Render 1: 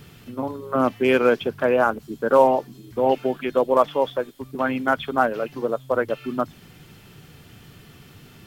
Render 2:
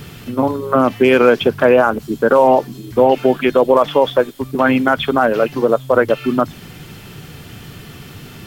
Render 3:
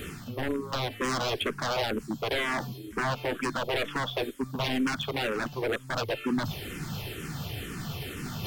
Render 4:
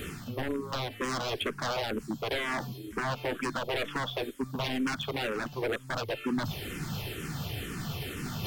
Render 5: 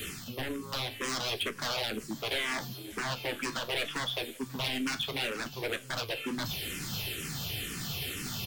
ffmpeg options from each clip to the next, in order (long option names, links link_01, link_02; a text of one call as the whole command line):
ffmpeg -i in.wav -af "alimiter=level_in=12.5dB:limit=-1dB:release=50:level=0:latency=1,volume=-1dB" out.wav
ffmpeg -i in.wav -filter_complex "[0:a]areverse,acompressor=mode=upward:threshold=-16dB:ratio=2.5,areverse,aeval=exprs='0.211*(abs(mod(val(0)/0.211+3,4)-2)-1)':channel_layout=same,asplit=2[link_01][link_02];[link_02]afreqshift=-2.1[link_03];[link_01][link_03]amix=inputs=2:normalize=1,volume=-7dB" out.wav
ffmpeg -i in.wav -af "alimiter=limit=-22dB:level=0:latency=1:release=327" out.wav
ffmpeg -i in.wav -filter_complex "[0:a]acrossover=split=310|1400|2200[link_01][link_02][link_03][link_04];[link_04]aeval=exprs='0.0708*sin(PI/2*2.24*val(0)/0.0708)':channel_layout=same[link_05];[link_01][link_02][link_03][link_05]amix=inputs=4:normalize=0,flanger=delay=9.2:depth=9.3:regen=-57:speed=0.72:shape=sinusoidal,aecho=1:1:539|1078|1617|2156:0.0708|0.0418|0.0246|0.0145" out.wav